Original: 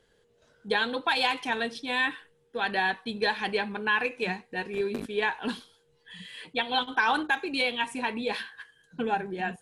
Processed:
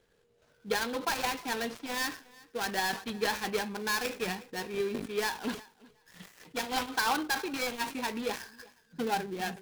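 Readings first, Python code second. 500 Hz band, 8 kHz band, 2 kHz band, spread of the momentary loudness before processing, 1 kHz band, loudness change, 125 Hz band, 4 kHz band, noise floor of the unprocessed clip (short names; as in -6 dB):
-3.0 dB, +11.5 dB, -6.5 dB, 13 LU, -4.0 dB, -4.5 dB, -2.0 dB, -4.5 dB, -67 dBFS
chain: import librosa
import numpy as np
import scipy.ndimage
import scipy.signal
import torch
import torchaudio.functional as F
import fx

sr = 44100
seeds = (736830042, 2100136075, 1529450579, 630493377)

p1 = fx.dead_time(x, sr, dead_ms=0.16)
p2 = p1 + fx.echo_feedback(p1, sr, ms=364, feedback_pct=19, wet_db=-23.0, dry=0)
p3 = fx.sustainer(p2, sr, db_per_s=150.0)
y = p3 * 10.0 ** (-2.5 / 20.0)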